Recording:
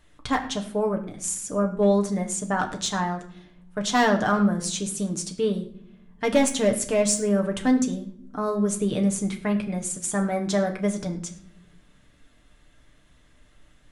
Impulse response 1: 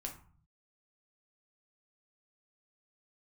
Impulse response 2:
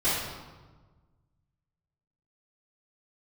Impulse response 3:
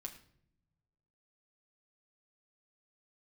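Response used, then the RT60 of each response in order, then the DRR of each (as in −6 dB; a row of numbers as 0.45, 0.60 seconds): 3; 0.45, 1.3, 0.70 seconds; 1.0, −12.5, 2.0 decibels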